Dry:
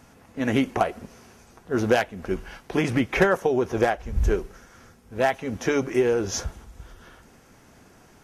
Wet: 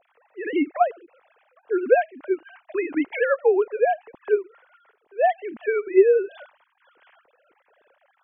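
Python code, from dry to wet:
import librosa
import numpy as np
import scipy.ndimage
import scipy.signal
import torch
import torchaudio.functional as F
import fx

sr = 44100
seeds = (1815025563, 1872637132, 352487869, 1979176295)

y = fx.sine_speech(x, sr)
y = y * 10.0 ** (1.5 / 20.0)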